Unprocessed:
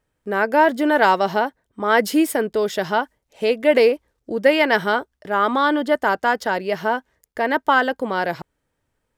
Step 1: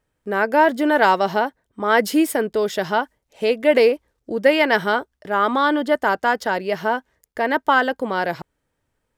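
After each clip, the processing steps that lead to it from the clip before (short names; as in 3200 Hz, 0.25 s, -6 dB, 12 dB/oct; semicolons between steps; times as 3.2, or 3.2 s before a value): nothing audible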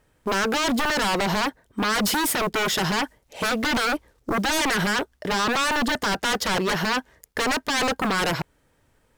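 limiter -14 dBFS, peak gain reduction 11 dB; short-mantissa float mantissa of 4-bit; sine folder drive 6 dB, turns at -19.5 dBFS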